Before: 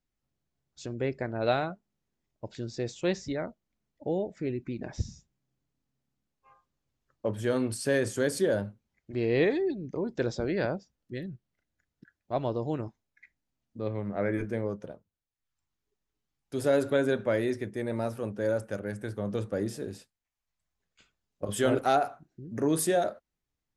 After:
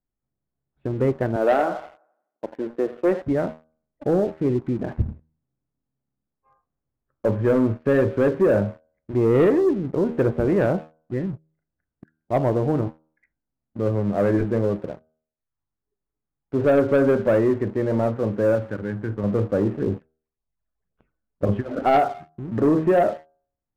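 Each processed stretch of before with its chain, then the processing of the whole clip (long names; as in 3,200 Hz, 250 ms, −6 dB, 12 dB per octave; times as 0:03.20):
0:01.36–0:03.22: high-pass filter 240 Hz 24 dB per octave + delay with a band-pass on its return 85 ms, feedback 49%, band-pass 1,100 Hz, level −10 dB
0:18.55–0:19.24: high-pass filter 50 Hz 6 dB per octave + parametric band 630 Hz −14 dB 0.79 octaves + mains-hum notches 50/100/150/200/250 Hz
0:19.79–0:21.84: compressor whose output falls as the input rises −30 dBFS, ratio −0.5 + all-pass phaser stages 8, 1.9 Hz, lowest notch 110–2,200 Hz
whole clip: Bessel low-pass filter 1,200 Hz, order 8; hum removal 78.81 Hz, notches 20; leveller curve on the samples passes 2; level +4 dB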